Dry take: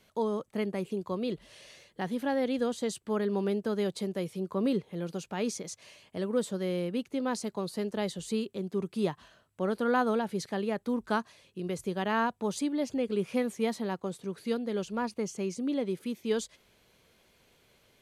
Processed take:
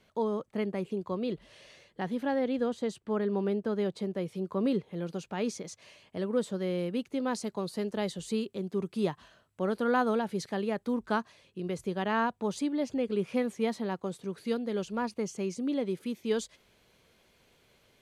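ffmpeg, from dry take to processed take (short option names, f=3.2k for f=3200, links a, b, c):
-af "asetnsamples=n=441:p=0,asendcmd='2.39 lowpass f 2300;4.28 lowpass f 4800;6.79 lowpass f 10000;10.99 lowpass f 5200;13.96 lowpass f 9700',lowpass=f=3.7k:p=1"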